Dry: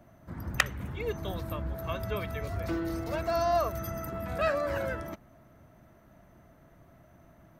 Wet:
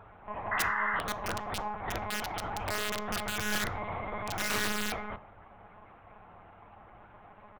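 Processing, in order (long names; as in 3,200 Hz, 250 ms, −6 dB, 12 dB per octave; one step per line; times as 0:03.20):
high-shelf EQ 2,400 Hz −5 dB
comb filter 5.3 ms, depth 60%
in parallel at −1.5 dB: downward compressor 16 to 1, threshold −40 dBFS, peak gain reduction 21 dB
on the sum: ring modulation 820 Hz
one-pitch LPC vocoder at 8 kHz 210 Hz
wrap-around overflow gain 24 dB
on a send at −11 dB: convolution reverb RT60 0.45 s, pre-delay 3 ms
on the sum: sound drawn into the spectrogram noise, 0:00.51–0:01.00, 930–2,100 Hz −31 dBFS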